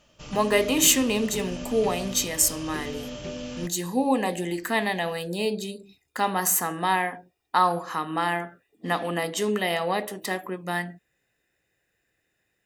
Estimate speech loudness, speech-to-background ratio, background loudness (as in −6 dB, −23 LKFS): −25.5 LKFS, 11.5 dB, −37.0 LKFS